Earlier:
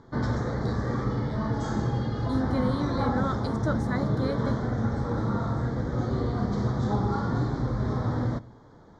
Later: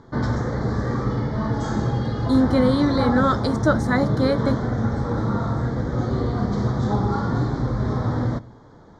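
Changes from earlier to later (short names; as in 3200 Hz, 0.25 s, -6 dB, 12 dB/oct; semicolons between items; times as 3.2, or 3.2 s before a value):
first voice: entry +1.40 s; second voice +11.0 dB; background +4.5 dB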